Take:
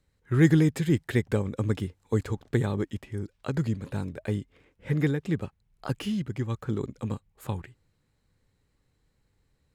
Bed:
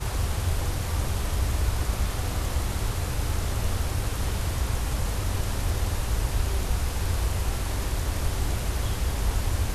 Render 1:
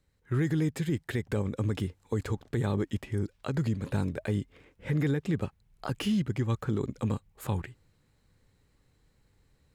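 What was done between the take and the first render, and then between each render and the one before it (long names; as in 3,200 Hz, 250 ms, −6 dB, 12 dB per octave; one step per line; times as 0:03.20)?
speech leveller within 4 dB 0.5 s
brickwall limiter −20.5 dBFS, peak gain reduction 9 dB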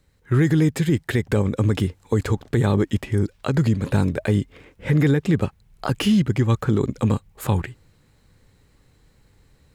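level +10 dB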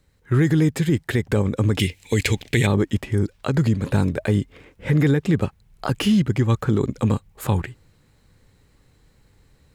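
0:01.79–0:02.67: high shelf with overshoot 1,700 Hz +10 dB, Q 3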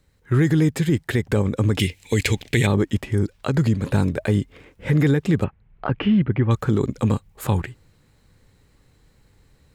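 0:05.44–0:06.51: low-pass filter 2,600 Hz 24 dB per octave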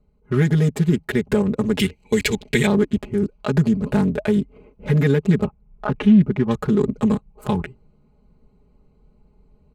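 adaptive Wiener filter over 25 samples
comb filter 4.8 ms, depth 90%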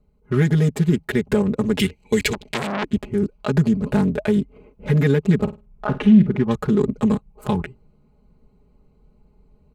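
0:02.33–0:02.84: saturating transformer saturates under 2,900 Hz
0:05.35–0:06.44: flutter between parallel walls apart 8.8 metres, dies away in 0.25 s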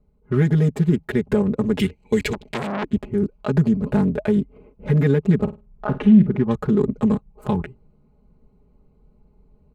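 high-shelf EQ 2,100 Hz −8.5 dB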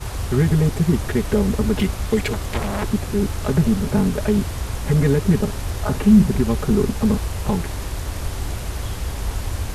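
mix in bed +0.5 dB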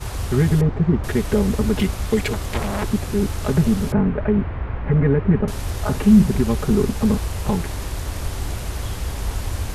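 0:00.61–0:01.04: low-pass filter 1,700 Hz
0:03.92–0:05.48: low-pass filter 2,200 Hz 24 dB per octave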